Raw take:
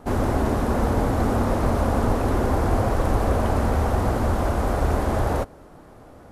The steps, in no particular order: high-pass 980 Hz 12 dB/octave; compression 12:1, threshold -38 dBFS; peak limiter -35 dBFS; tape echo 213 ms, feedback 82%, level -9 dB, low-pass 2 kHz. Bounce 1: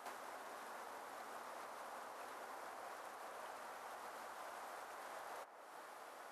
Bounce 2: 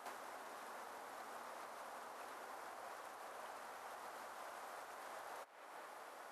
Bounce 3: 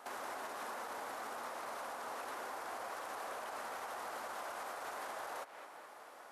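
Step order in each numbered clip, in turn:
compression > tape echo > high-pass > peak limiter; tape echo > compression > high-pass > peak limiter; tape echo > high-pass > compression > peak limiter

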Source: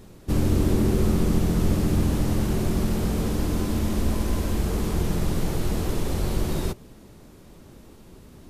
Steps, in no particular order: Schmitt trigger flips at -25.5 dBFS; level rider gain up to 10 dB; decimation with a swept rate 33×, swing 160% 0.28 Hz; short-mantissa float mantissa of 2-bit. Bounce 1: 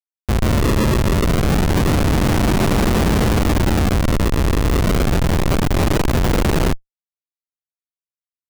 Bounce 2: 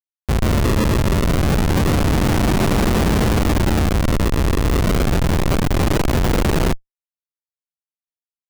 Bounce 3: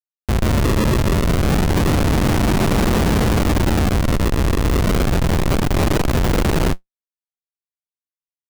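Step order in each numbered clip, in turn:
decimation with a swept rate > level rider > short-mantissa float > Schmitt trigger; short-mantissa float > level rider > decimation with a swept rate > Schmitt trigger; level rider > decimation with a swept rate > Schmitt trigger > short-mantissa float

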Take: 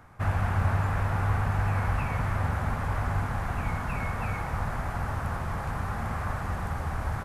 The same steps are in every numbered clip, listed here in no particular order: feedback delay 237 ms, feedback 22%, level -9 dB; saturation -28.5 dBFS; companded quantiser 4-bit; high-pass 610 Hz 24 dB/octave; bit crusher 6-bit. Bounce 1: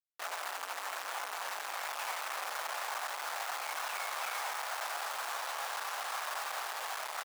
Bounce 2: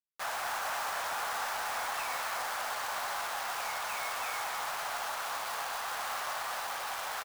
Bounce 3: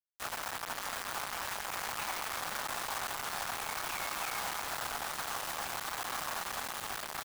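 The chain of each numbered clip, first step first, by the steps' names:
feedback delay > bit crusher > saturation > companded quantiser > high-pass; bit crusher > high-pass > companded quantiser > saturation > feedback delay; companded quantiser > feedback delay > saturation > high-pass > bit crusher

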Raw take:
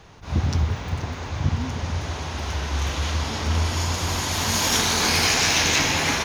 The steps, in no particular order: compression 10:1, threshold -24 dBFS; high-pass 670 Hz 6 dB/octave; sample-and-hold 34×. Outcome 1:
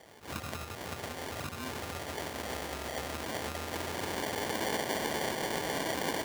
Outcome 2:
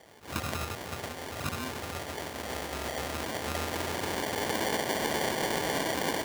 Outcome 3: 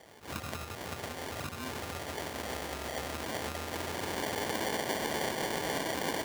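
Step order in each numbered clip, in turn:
compression > sample-and-hold > high-pass; sample-and-hold > high-pass > compression; sample-and-hold > compression > high-pass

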